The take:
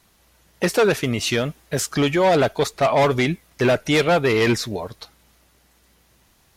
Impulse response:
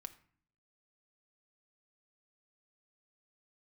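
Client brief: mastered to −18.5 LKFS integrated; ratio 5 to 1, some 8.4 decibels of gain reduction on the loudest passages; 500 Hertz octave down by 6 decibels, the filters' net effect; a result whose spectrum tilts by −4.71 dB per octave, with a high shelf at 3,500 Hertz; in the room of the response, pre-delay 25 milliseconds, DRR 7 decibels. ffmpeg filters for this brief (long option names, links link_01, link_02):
-filter_complex "[0:a]equalizer=frequency=500:width_type=o:gain=-7.5,highshelf=frequency=3500:gain=-4.5,acompressor=threshold=-27dB:ratio=5,asplit=2[link_01][link_02];[1:a]atrim=start_sample=2205,adelay=25[link_03];[link_02][link_03]afir=irnorm=-1:irlink=0,volume=-2dB[link_04];[link_01][link_04]amix=inputs=2:normalize=0,volume=11.5dB"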